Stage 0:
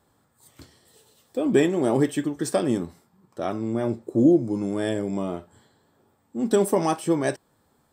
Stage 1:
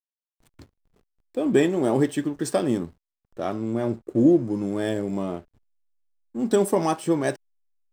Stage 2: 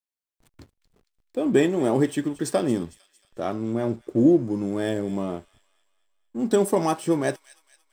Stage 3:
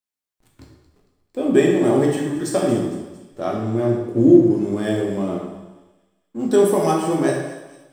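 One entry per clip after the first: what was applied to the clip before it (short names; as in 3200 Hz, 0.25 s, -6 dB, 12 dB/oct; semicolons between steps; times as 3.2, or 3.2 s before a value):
backlash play -42 dBFS
thin delay 0.227 s, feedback 48%, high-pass 2700 Hz, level -14 dB
plate-style reverb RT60 1.1 s, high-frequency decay 0.75×, DRR -1.5 dB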